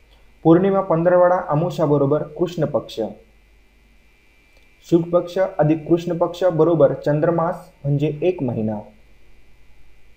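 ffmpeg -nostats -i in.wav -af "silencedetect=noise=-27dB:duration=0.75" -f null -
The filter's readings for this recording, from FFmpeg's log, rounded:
silence_start: 3.11
silence_end: 4.92 | silence_duration: 1.81
silence_start: 8.81
silence_end: 10.17 | silence_duration: 1.36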